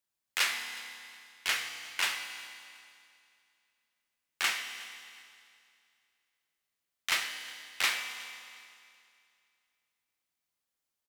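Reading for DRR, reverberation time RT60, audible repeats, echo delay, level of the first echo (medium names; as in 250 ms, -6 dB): 5.5 dB, 2.4 s, 2, 364 ms, -23.0 dB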